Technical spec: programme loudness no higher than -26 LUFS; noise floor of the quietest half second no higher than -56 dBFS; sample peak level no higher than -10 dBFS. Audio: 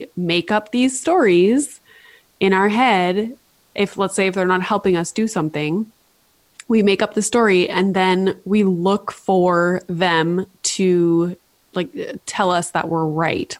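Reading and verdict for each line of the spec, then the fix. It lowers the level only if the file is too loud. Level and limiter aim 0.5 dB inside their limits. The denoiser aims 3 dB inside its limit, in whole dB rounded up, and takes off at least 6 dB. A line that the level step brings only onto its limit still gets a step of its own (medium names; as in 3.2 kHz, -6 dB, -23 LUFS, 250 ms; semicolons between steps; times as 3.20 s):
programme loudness -18.0 LUFS: fail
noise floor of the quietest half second -59 dBFS: pass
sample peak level -6.0 dBFS: fail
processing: trim -8.5 dB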